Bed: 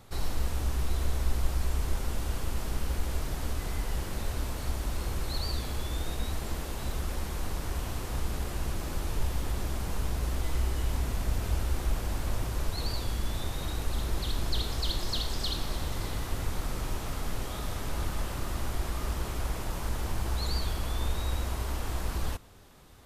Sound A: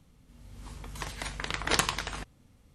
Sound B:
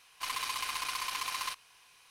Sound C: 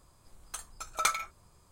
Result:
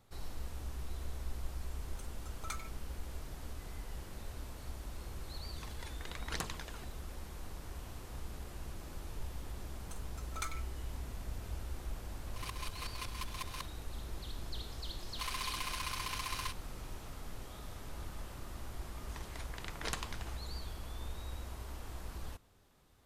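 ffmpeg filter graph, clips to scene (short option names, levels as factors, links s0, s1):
-filter_complex "[3:a]asplit=2[s0][s1];[1:a]asplit=2[s2][s3];[2:a]asplit=2[s4][s5];[0:a]volume=0.237[s6];[s2]aphaser=in_gain=1:out_gain=1:delay=3:decay=0.5:speed=1.1:type=triangular[s7];[s4]aeval=exprs='val(0)*pow(10,-19*if(lt(mod(-5.4*n/s,1),2*abs(-5.4)/1000),1-mod(-5.4*n/s,1)/(2*abs(-5.4)/1000),(mod(-5.4*n/s,1)-2*abs(-5.4)/1000)/(1-2*abs(-5.4)/1000))/20)':c=same[s8];[s0]atrim=end=1.71,asetpts=PTS-STARTPTS,volume=0.158,afade=t=in:d=0.004:c=hsin,afade=t=out:st=1.706:d=0.004:c=hsin,adelay=1450[s9];[s7]atrim=end=2.74,asetpts=PTS-STARTPTS,volume=0.178,afade=t=in:d=0.004:c=hsin,afade=t=out:st=2.736:d=0.004:c=hsin,adelay=203301S[s10];[s1]atrim=end=1.71,asetpts=PTS-STARTPTS,volume=0.211,afade=t=in:d=0.004:c=hsin,afade=t=out:st=1.706:d=0.004:c=hsin,adelay=9370[s11];[s8]atrim=end=2.1,asetpts=PTS-STARTPTS,volume=0.631,afade=t=in:d=0.004:c=hsin,afade=t=out:st=2.096:d=0.004:c=hsin,adelay=12130[s12];[s5]atrim=end=2.1,asetpts=PTS-STARTPTS,volume=0.596,afade=t=in:d=0.004:c=hsin,afade=t=out:st=2.096:d=0.004:c=hsin,adelay=14980[s13];[s3]atrim=end=2.74,asetpts=PTS-STARTPTS,volume=0.211,afade=t=in:d=0.004:c=hsin,afade=t=out:st=2.736:d=0.004:c=hsin,adelay=18140[s14];[s6][s9][s10][s11][s12][s13][s14]amix=inputs=7:normalize=0"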